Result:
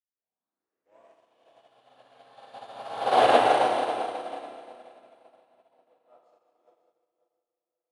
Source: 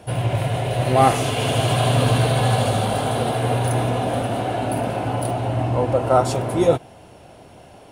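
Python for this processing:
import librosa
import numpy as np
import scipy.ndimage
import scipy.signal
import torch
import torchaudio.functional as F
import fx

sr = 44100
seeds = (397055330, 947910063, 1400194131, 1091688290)

p1 = fx.tape_start_head(x, sr, length_s=1.27)
p2 = fx.doppler_pass(p1, sr, speed_mps=15, closest_m=1.6, pass_at_s=3.24)
p3 = fx.tilt_shelf(p2, sr, db=5.0, hz=1100.0)
p4 = fx.fold_sine(p3, sr, drive_db=4, ceiling_db=-8.5)
p5 = p3 + (p4 * 10.0 ** (-4.0 / 20.0))
p6 = fx.bandpass_edges(p5, sr, low_hz=680.0, high_hz=6000.0)
p7 = p6 + fx.echo_feedback(p6, sr, ms=538, feedback_pct=49, wet_db=-8, dry=0)
p8 = fx.rev_schroeder(p7, sr, rt60_s=3.4, comb_ms=28, drr_db=-5.0)
y = fx.upward_expand(p8, sr, threshold_db=-43.0, expansion=2.5)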